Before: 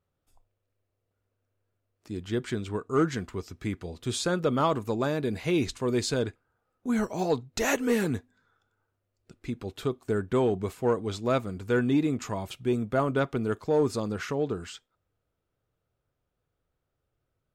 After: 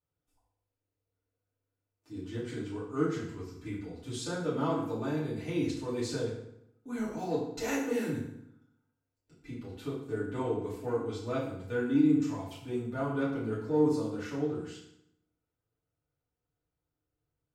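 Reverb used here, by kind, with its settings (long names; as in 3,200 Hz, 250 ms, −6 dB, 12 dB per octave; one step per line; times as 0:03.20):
feedback delay network reverb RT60 0.76 s, low-frequency decay 1.2×, high-frequency decay 0.8×, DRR −9.5 dB
level −17.5 dB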